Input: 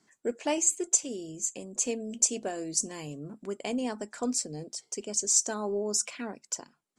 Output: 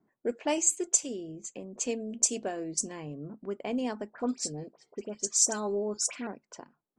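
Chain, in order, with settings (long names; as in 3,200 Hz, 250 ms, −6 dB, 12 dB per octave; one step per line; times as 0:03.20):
low-pass that shuts in the quiet parts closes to 790 Hz, open at −22.5 dBFS
0:04.10–0:06.27: all-pass dispersion highs, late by 61 ms, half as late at 2,100 Hz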